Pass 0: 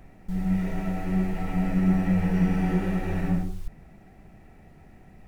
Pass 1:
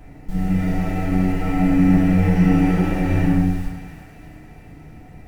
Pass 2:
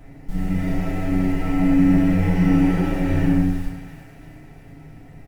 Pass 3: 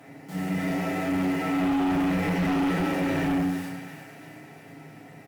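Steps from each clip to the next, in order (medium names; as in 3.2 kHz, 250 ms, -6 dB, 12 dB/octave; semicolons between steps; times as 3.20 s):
bass shelf 230 Hz +3 dB; thinning echo 345 ms, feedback 60%, high-pass 820 Hz, level -10.5 dB; FDN reverb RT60 0.78 s, low-frequency decay 1.05×, high-frequency decay 0.9×, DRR -3 dB; trim +2.5 dB
comb 7.4 ms, depth 46%; trim -2 dB
high-pass 120 Hz 24 dB/octave; bass shelf 230 Hz -12 dB; in parallel at -8 dB: sine folder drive 11 dB, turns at -12.5 dBFS; on the sum: trim -6 dB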